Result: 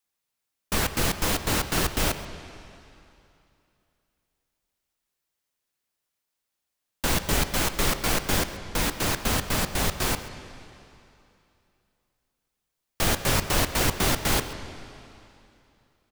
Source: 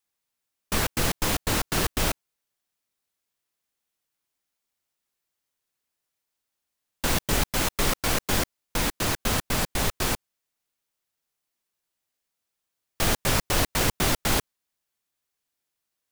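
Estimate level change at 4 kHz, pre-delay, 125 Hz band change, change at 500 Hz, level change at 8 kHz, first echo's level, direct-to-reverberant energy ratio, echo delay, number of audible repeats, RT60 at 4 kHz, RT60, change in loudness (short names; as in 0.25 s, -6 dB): +0.5 dB, 6 ms, +0.5 dB, +0.5 dB, 0.0 dB, -17.5 dB, 9.5 dB, 0.132 s, 1, 2.6 s, 2.7 s, 0.0 dB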